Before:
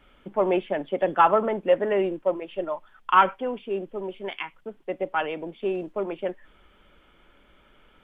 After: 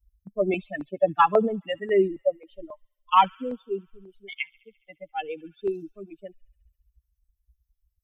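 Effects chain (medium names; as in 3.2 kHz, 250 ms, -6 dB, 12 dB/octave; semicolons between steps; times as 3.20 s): expander on every frequency bin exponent 3; feedback echo behind a high-pass 69 ms, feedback 73%, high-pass 3.2 kHz, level -22 dB; step-sequenced notch 3.7 Hz 290–2000 Hz; trim +8.5 dB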